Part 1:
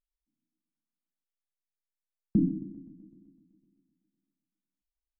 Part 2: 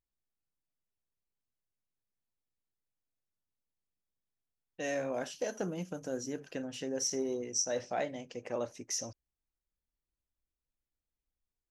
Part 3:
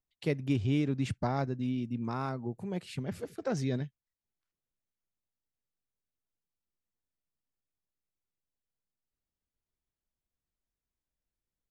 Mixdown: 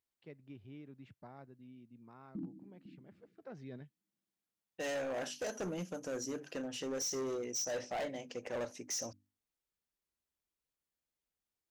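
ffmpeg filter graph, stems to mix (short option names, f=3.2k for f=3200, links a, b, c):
-filter_complex "[0:a]volume=-11.5dB,asplit=2[a][b];[b]volume=-18dB[c];[1:a]bandreject=f=50:t=h:w=6,bandreject=f=100:t=h:w=6,bandreject=f=150:t=h:w=6,bandreject=f=200:t=h:w=6,bandreject=f=250:t=h:w=6,bandreject=f=300:t=h:w=6,volume=1dB[d];[2:a]lowpass=2.9k,volume=-12.5dB,afade=t=in:st=3.22:d=0.63:silence=0.398107,asplit=2[e][f];[f]apad=whole_len=228985[g];[a][g]sidechaincompress=threshold=-57dB:ratio=6:attack=9.1:release=291[h];[c]aecho=0:1:502:1[i];[h][d][e][i]amix=inputs=4:normalize=0,highpass=f=170:p=1,volume=34.5dB,asoftclip=hard,volume=-34.5dB"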